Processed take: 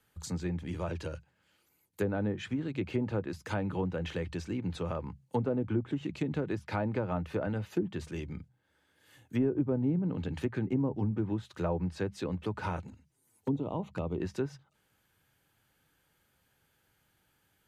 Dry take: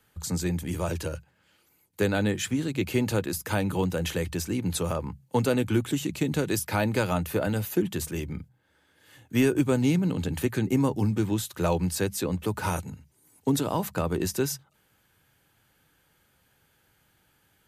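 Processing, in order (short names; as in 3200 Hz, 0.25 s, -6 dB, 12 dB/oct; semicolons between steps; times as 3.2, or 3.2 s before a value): treble ducked by the level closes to 720 Hz, closed at -19.5 dBFS; 12.87–14.18 envelope flanger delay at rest 10.1 ms, full sweep at -26 dBFS; gain -6 dB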